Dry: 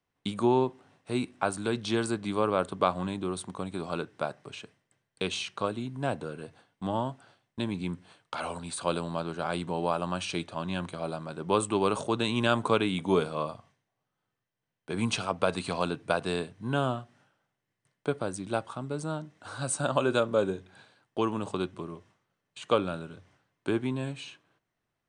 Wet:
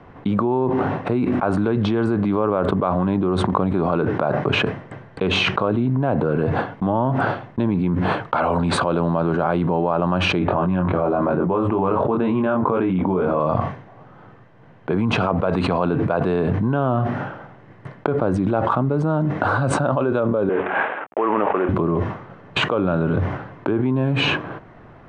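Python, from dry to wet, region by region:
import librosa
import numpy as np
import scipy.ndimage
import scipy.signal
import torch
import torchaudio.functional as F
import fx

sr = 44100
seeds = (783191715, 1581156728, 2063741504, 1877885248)

y = fx.chain(x, sr, fx.lowpass(hz=2400.0, slope=12),
    fx.doubler(ms=22.0, db=-3), at=(10.39, 13.4))
y = fx.chain(y, sr, fx.cvsd(bps=16000),
    fx.highpass(hz=500.0, slope=12),
    fx.air_absorb(metres=79.0), at=(20.49, 21.69))
y = scipy.signal.sosfilt(scipy.signal.butter(2, 1300.0, 'lowpass', fs=sr, output='sos'), y)
y = fx.env_flatten(y, sr, amount_pct=100)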